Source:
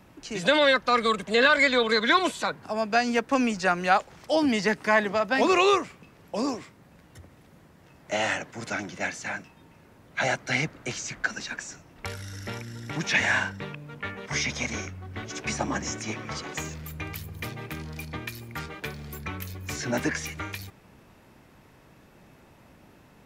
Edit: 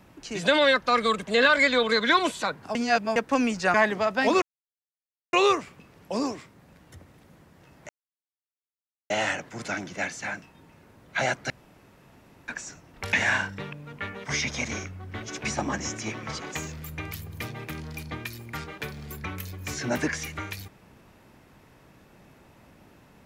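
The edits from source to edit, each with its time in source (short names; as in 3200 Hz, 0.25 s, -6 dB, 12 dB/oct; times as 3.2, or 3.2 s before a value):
2.75–3.16 reverse
3.74–4.88 cut
5.56 insert silence 0.91 s
8.12 insert silence 1.21 s
10.52–11.5 room tone
12.15–13.15 cut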